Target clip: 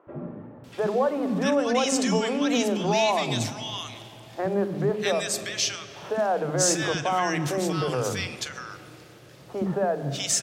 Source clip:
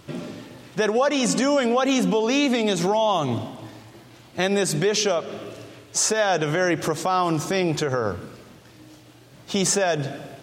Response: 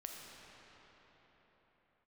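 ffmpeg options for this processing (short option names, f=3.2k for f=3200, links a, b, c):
-filter_complex "[0:a]acrossover=split=320|1400[a][b][c];[a]adelay=70[d];[c]adelay=640[e];[d][b][e]amix=inputs=3:normalize=0,acontrast=28,asplit=2[f][g];[1:a]atrim=start_sample=2205,adelay=42[h];[g][h]afir=irnorm=-1:irlink=0,volume=-11.5dB[i];[f][i]amix=inputs=2:normalize=0,volume=-6.5dB"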